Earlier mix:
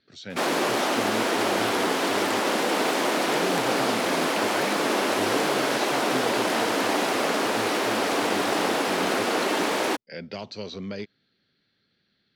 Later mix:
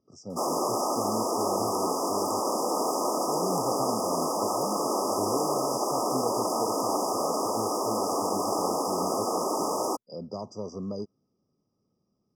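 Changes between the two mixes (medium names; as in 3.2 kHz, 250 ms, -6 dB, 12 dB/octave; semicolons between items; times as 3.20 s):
background: add bass shelf 400 Hz -7.5 dB; master: add brick-wall FIR band-stop 1.3–4.8 kHz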